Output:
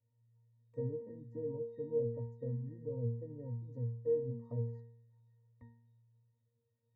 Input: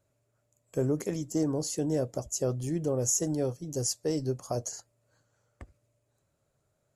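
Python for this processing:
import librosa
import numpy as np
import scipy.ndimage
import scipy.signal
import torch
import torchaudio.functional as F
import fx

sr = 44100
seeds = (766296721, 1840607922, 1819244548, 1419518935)

y = fx.env_lowpass_down(x, sr, base_hz=600.0, full_db=-27.0)
y = fx.octave_resonator(y, sr, note='A#', decay_s=0.63)
y = y * 10.0 ** (9.5 / 20.0)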